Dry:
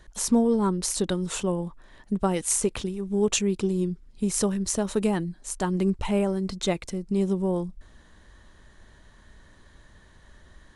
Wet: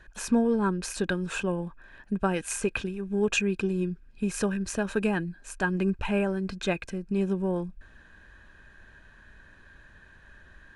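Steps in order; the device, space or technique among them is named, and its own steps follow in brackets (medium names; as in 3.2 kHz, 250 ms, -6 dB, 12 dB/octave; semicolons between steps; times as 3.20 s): inside a helmet (treble shelf 4.5 kHz -8.5 dB; small resonant body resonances 1.6/2.5 kHz, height 18 dB, ringing for 25 ms); trim -2.5 dB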